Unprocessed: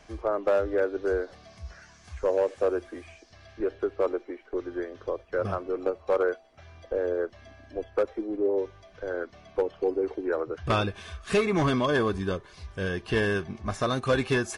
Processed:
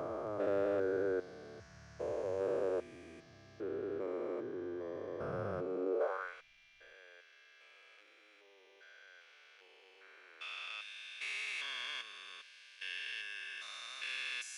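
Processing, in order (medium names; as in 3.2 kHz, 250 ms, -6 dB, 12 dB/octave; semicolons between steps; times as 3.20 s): spectrogram pixelated in time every 400 ms; high-pass sweep 130 Hz -> 2.5 kHz, 5.69–6.36 s; 6.22–6.93 s: added noise brown -73 dBFS; trim -5.5 dB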